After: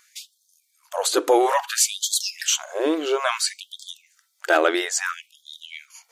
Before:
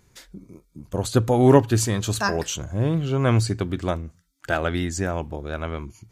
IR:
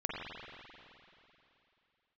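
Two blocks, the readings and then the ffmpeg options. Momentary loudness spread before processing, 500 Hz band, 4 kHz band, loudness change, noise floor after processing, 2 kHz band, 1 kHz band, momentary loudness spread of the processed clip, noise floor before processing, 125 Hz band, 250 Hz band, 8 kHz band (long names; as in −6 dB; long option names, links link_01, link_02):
15 LU, 0.0 dB, +8.0 dB, +1.0 dB, −69 dBFS, +4.0 dB, +3.0 dB, 20 LU, −63 dBFS, below −40 dB, −6.0 dB, +8.0 dB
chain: -af "apsyclip=17dB,afftfilt=real='re*gte(b*sr/1024,280*pow(3200/280,0.5+0.5*sin(2*PI*0.59*pts/sr)))':imag='im*gte(b*sr/1024,280*pow(3200/280,0.5+0.5*sin(2*PI*0.59*pts/sr)))':win_size=1024:overlap=0.75,volume=-8.5dB"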